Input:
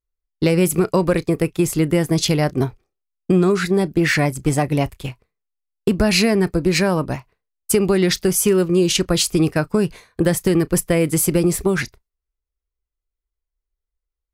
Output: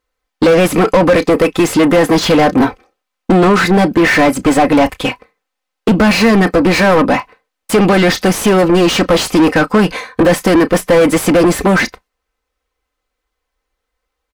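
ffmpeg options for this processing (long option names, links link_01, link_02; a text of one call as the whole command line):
ffmpeg -i in.wav -filter_complex "[0:a]aecho=1:1:3.9:0.67,asplit=2[link_01][link_02];[link_02]highpass=frequency=720:poles=1,volume=31dB,asoftclip=type=tanh:threshold=-2dB[link_03];[link_01][link_03]amix=inputs=2:normalize=0,lowpass=frequency=1400:poles=1,volume=-6dB,volume=1dB" out.wav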